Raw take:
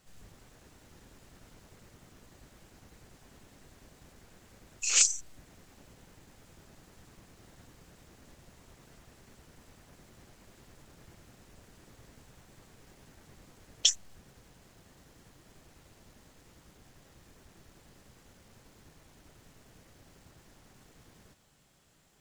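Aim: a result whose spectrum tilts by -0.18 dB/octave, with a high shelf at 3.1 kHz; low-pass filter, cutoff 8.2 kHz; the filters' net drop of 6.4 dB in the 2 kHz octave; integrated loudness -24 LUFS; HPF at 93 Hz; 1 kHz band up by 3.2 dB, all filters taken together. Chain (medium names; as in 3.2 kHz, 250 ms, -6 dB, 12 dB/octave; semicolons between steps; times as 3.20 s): high-pass 93 Hz; low-pass 8.2 kHz; peaking EQ 1 kHz +7.5 dB; peaking EQ 2 kHz -8.5 dB; treble shelf 3.1 kHz -4 dB; trim +7.5 dB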